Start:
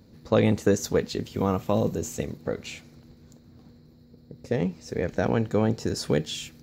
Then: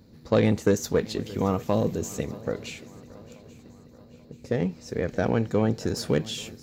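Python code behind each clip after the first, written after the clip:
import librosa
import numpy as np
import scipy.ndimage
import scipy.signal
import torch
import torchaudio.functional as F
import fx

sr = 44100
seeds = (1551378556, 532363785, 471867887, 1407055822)

y = fx.self_delay(x, sr, depth_ms=0.064)
y = fx.echo_swing(y, sr, ms=833, ratio=3, feedback_pct=47, wet_db=-20.5)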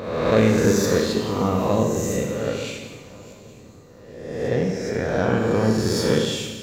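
y = fx.spec_swells(x, sr, rise_s=1.2)
y = fx.rev_schroeder(y, sr, rt60_s=1.2, comb_ms=32, drr_db=2.0)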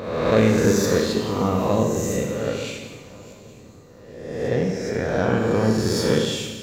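y = x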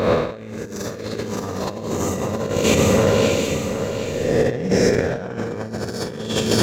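y = fx.echo_swing(x, sr, ms=768, ratio=3, feedback_pct=34, wet_db=-5.5)
y = fx.over_compress(y, sr, threshold_db=-26.0, ratio=-0.5)
y = F.gain(torch.from_numpy(y), 6.0).numpy()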